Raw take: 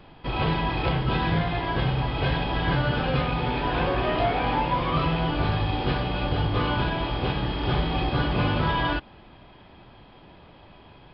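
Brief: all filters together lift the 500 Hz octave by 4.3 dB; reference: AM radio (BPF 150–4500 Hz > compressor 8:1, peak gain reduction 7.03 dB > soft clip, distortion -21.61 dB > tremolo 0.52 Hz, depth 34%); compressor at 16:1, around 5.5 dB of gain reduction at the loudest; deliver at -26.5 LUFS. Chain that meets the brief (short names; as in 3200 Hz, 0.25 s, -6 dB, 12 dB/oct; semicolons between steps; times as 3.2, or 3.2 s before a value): bell 500 Hz +5.5 dB; compressor 16:1, threshold -23 dBFS; BPF 150–4500 Hz; compressor 8:1, threshold -30 dBFS; soft clip -25.5 dBFS; tremolo 0.52 Hz, depth 34%; gain +10.5 dB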